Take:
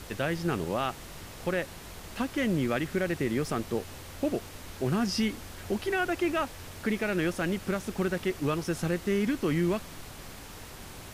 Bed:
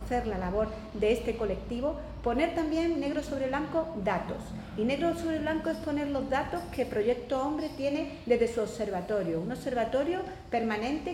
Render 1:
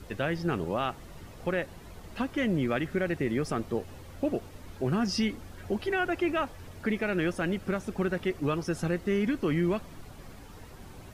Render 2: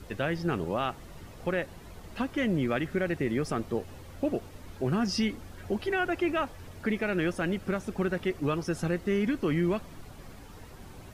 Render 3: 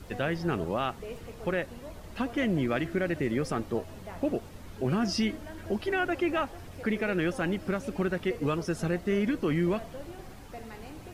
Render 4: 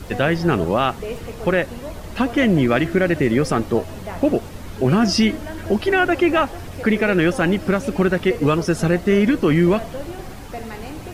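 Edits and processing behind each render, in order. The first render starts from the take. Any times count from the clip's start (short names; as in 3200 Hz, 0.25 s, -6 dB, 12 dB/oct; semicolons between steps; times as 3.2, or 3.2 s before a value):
denoiser 10 dB, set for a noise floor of -45 dBFS
nothing audible
add bed -15 dB
gain +11.5 dB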